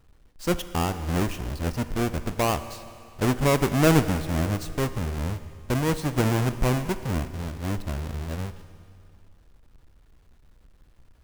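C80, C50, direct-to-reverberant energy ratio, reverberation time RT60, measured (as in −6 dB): 13.0 dB, 12.5 dB, 11.5 dB, 2.5 s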